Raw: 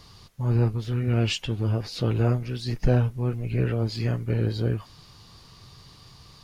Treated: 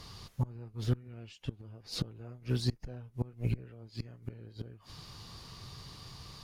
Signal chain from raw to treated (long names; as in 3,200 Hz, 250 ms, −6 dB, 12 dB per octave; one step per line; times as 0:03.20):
gate with flip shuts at −20 dBFS, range −26 dB
harmonic generator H 6 −31 dB, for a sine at −19 dBFS
dynamic equaliser 2,700 Hz, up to −6 dB, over −53 dBFS, Q 0.89
level +1 dB